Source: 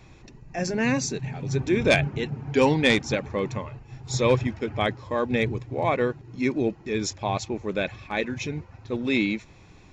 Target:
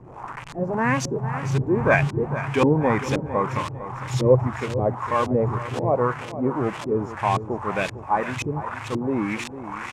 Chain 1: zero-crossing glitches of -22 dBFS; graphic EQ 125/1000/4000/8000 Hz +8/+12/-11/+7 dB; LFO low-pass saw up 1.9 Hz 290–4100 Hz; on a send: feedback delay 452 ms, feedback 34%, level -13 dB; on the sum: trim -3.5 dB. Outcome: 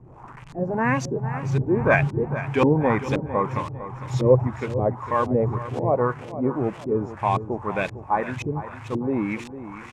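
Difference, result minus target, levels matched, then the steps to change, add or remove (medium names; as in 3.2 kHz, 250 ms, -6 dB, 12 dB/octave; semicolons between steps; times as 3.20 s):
zero-crossing glitches: distortion -9 dB
change: zero-crossing glitches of -12.5 dBFS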